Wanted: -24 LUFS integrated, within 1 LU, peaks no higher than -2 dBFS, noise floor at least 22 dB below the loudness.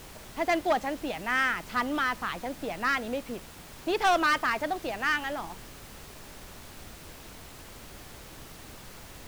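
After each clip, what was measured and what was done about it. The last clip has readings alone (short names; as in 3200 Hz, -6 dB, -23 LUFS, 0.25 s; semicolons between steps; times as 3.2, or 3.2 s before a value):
clipped 0.7%; flat tops at -19.0 dBFS; noise floor -47 dBFS; noise floor target -51 dBFS; loudness -28.5 LUFS; peak -19.0 dBFS; loudness target -24.0 LUFS
-> clip repair -19 dBFS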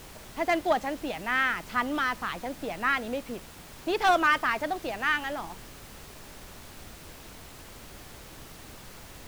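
clipped 0.0%; noise floor -47 dBFS; noise floor target -50 dBFS
-> noise print and reduce 6 dB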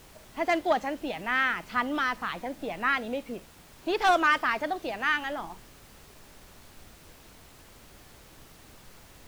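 noise floor -53 dBFS; loudness -28.0 LUFS; peak -12.0 dBFS; loudness target -24.0 LUFS
-> gain +4 dB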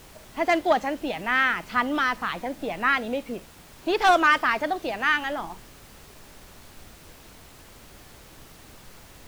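loudness -24.0 LUFS; peak -8.0 dBFS; noise floor -49 dBFS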